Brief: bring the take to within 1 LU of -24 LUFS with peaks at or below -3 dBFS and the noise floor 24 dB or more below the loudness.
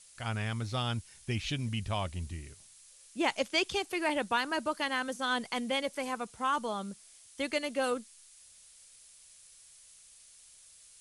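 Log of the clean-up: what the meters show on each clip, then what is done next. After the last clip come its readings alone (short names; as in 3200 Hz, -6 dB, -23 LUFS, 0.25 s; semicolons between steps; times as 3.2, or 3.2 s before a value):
noise floor -57 dBFS; noise floor target -58 dBFS; loudness -33.5 LUFS; peak -15.5 dBFS; loudness target -24.0 LUFS
-> denoiser 6 dB, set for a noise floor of -57 dBFS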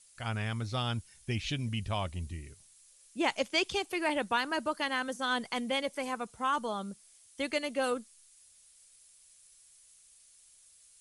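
noise floor -61 dBFS; loudness -33.5 LUFS; peak -15.5 dBFS; loudness target -24.0 LUFS
-> gain +9.5 dB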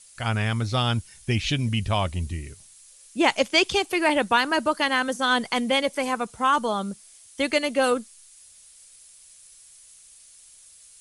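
loudness -24.0 LUFS; peak -6.0 dBFS; noise floor -51 dBFS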